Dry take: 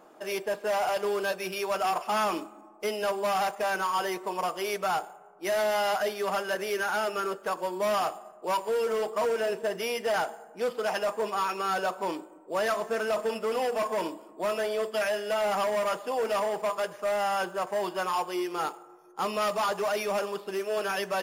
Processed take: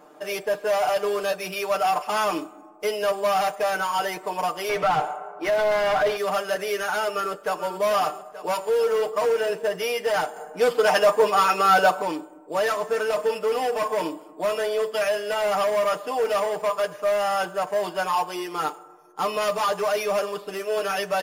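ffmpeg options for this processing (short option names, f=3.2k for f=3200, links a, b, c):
-filter_complex "[0:a]asettb=1/sr,asplit=3[a][b][c];[a]atrim=end=4.694[d];[b]atrim=start=4.69:end=6.17,asetpts=PTS-STARTPTS,afade=t=in:d=0.004:c=qsin,afade=t=out:st=1.476:d=0.004:c=qsin,asplit=2[e][f];[f]highpass=f=720:p=1,volume=22dB,asoftclip=type=tanh:threshold=-19.5dB[g];[e][g]amix=inputs=2:normalize=0,lowpass=f=1.5k:p=1,volume=-6dB[h];[c]atrim=start=6.166[i];[d][h]acrossfade=d=0.004:c1=hsin:c2=qsin[j];[j][i]acrossfade=d=0.004:c1=qsin:c2=hsin,asplit=2[k][l];[l]afade=t=in:st=7.04:d=0.01,afade=t=out:st=7.64:d=0.01,aecho=0:1:440|880|1320|1760|2200|2640|3080|3520:0.266073|0.172947|0.112416|0.0730702|0.0474956|0.0308721|0.0200669|0.0130435[m];[k][m]amix=inputs=2:normalize=0,asplit=3[n][o][p];[n]atrim=end=10.362[q];[o]atrim=start=10.358:end=12.022,asetpts=PTS-STARTPTS,volume=6dB[r];[p]atrim=start=12.018[s];[q][r]acrossfade=d=0.004:c1=hsin:c2=hsin[t];[t][s]acrossfade=d=0.004:c1=hsin:c2=hsin,aecho=1:1:6.7:0.63,volume=2.5dB"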